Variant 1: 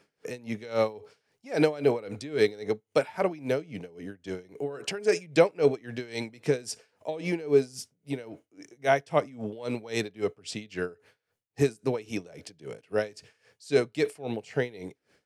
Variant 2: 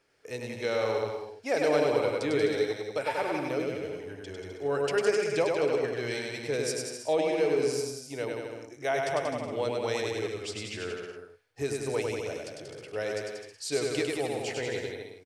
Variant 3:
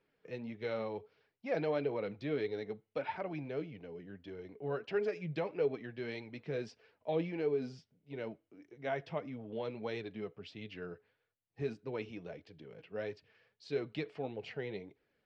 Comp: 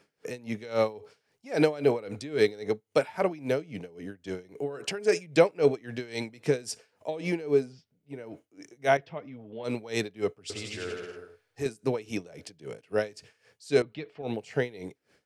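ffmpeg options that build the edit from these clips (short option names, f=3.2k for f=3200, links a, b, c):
-filter_complex "[2:a]asplit=3[a][b][c];[0:a]asplit=5[d][e][f][g][h];[d]atrim=end=7.74[i];[a]atrim=start=7.5:end=8.32[j];[e]atrim=start=8.08:end=8.972[k];[b]atrim=start=8.968:end=9.642[l];[f]atrim=start=9.638:end=10.502[m];[1:a]atrim=start=10.498:end=11.662[n];[g]atrim=start=11.658:end=13.822[o];[c]atrim=start=13.818:end=14.222[p];[h]atrim=start=14.218[q];[i][j]acrossfade=d=0.24:c1=tri:c2=tri[r];[r][k]acrossfade=d=0.24:c1=tri:c2=tri[s];[s][l]acrossfade=d=0.004:c1=hsin:c2=hsin[t];[t][m]acrossfade=d=0.004:c1=hsin:c2=hsin[u];[u][n]acrossfade=d=0.004:c1=hsin:c2=hsin[v];[v][o]acrossfade=d=0.004:c1=hsin:c2=hsin[w];[w][p]acrossfade=d=0.004:c1=hsin:c2=hsin[x];[x][q]acrossfade=d=0.004:c1=hsin:c2=hsin"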